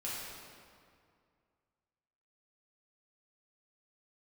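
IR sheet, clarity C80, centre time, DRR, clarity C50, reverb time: 0.0 dB, 130 ms, -8.0 dB, -2.0 dB, 2.2 s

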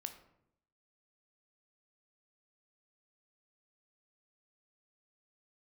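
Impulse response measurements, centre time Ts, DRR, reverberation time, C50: 12 ms, 7.0 dB, 0.75 s, 10.5 dB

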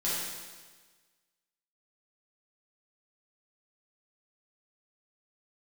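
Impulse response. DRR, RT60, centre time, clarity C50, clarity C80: -9.5 dB, 1.4 s, 100 ms, -2.5 dB, 1.0 dB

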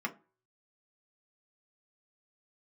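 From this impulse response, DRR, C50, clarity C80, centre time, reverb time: 1.5 dB, 18.0 dB, 24.5 dB, 7 ms, 0.40 s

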